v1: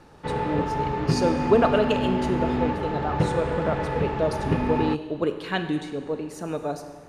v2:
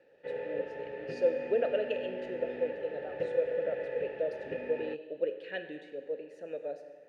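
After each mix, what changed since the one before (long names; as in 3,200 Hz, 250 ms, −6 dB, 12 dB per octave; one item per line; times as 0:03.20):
master: add formant filter e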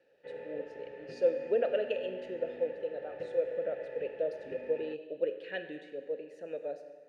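background −6.5 dB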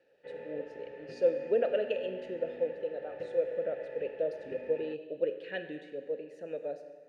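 speech: add low-shelf EQ 160 Hz +9 dB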